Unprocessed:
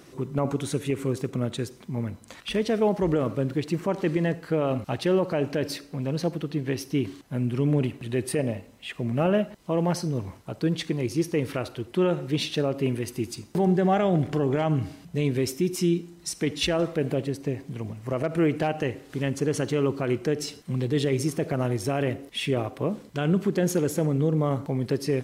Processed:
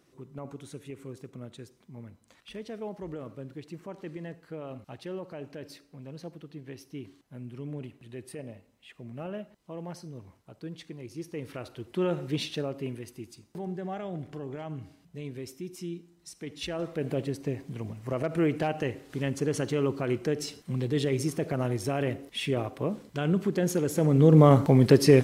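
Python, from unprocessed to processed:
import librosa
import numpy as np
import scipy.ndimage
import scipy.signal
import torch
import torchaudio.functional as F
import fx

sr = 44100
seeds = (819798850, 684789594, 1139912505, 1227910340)

y = fx.gain(x, sr, db=fx.line((11.05, -15.0), (12.23, -3.0), (13.33, -14.0), (16.4, -14.0), (17.2, -3.0), (23.88, -3.0), (24.38, 8.0)))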